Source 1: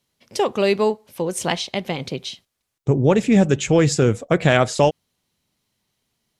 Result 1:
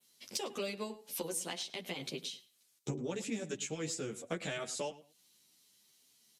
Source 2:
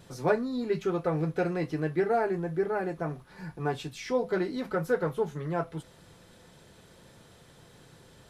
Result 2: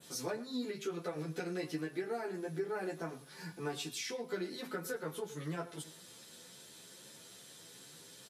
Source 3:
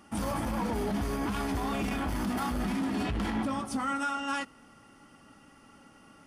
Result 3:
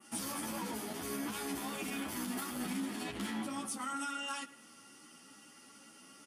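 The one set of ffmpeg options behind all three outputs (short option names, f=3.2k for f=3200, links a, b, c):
-filter_complex "[0:a]acrossover=split=620|3600[a][b][c];[c]aeval=exprs='0.316*sin(PI/2*2*val(0)/0.316)':c=same[d];[a][b][d]amix=inputs=3:normalize=0,highpass=230,equalizer=f=720:w=0.72:g=-5.5,aresample=32000,aresample=44100,acompressor=threshold=-34dB:ratio=12,adynamicequalizer=threshold=0.00178:dfrequency=5100:dqfactor=1.2:tfrequency=5100:tqfactor=1.2:attack=5:release=100:ratio=0.375:range=3:mode=cutabove:tftype=bell,asplit=2[e][f];[f]adelay=106,lowpass=f=3.5k:p=1,volume=-16dB,asplit=2[g][h];[h]adelay=106,lowpass=f=3.5k:p=1,volume=0.24[i];[e][g][i]amix=inputs=3:normalize=0,asoftclip=type=tanh:threshold=-21dB,asplit=2[j][k];[k]adelay=10.8,afreqshift=2.4[l];[j][l]amix=inputs=2:normalize=1,volume=2.5dB"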